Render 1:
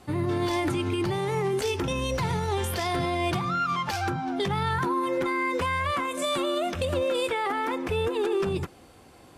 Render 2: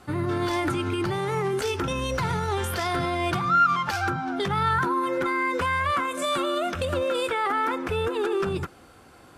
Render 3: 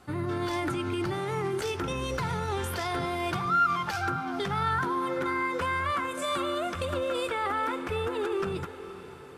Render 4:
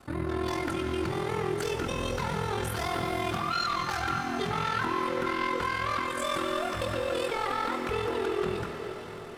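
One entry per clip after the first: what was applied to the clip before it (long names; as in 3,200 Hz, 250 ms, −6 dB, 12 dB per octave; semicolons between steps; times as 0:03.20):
parametric band 1,400 Hz +9 dB 0.46 octaves
feedback delay with all-pass diffusion 506 ms, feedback 54%, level −13.5 dB; level −4.5 dB
sine wavefolder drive 8 dB, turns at −16 dBFS; ring modulation 21 Hz; reverb with rising layers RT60 3.6 s, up +7 semitones, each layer −8 dB, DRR 6 dB; level −8 dB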